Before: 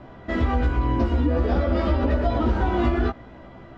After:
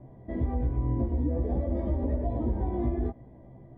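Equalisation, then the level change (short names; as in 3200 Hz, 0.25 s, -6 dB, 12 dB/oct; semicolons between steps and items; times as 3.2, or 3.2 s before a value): running mean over 32 samples; air absorption 100 m; bell 130 Hz +8.5 dB 0.3 oct; -6.5 dB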